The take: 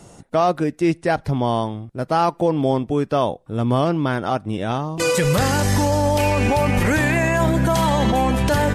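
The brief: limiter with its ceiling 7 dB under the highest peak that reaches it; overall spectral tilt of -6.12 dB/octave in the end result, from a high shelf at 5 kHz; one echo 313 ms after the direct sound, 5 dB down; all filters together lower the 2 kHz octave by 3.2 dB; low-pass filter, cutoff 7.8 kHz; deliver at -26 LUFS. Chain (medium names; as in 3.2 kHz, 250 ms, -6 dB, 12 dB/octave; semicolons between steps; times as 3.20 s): low-pass 7.8 kHz; peaking EQ 2 kHz -3.5 dB; treble shelf 5 kHz -4 dB; peak limiter -15.5 dBFS; delay 313 ms -5 dB; trim -2.5 dB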